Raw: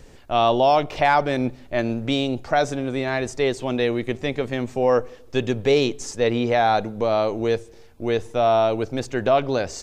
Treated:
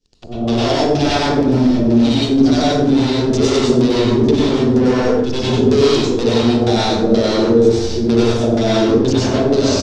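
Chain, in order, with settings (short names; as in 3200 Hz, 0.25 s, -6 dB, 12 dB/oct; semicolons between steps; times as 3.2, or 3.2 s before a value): short-time reversal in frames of 0.19 s; band shelf 1100 Hz -12 dB 2.5 oct; notches 50/100/150/200/250/300/350/400 Hz; AGC gain up to 13.5 dB; sample leveller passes 5; limiter -13.5 dBFS, peak gain reduction 10.5 dB; LFO low-pass square 2.1 Hz 400–5400 Hz; echo 0.903 s -19.5 dB; plate-style reverb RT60 0.78 s, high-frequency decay 0.6×, pre-delay 85 ms, DRR -7 dB; gain -7.5 dB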